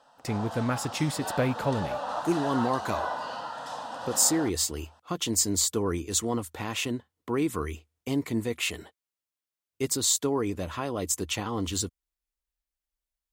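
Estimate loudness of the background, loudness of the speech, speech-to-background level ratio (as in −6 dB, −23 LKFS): −35.5 LKFS, −28.5 LKFS, 7.0 dB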